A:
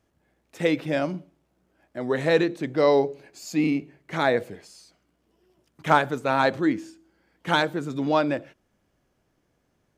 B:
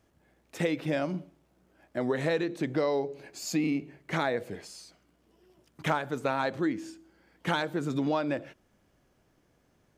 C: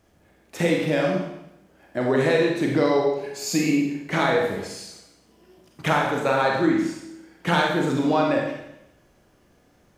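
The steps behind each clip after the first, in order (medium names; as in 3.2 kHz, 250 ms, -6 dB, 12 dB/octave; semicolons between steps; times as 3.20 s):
compression 6:1, threshold -28 dBFS, peak gain reduction 14.5 dB; trim +2.5 dB
Schroeder reverb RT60 0.85 s, combs from 31 ms, DRR -1 dB; trim +5.5 dB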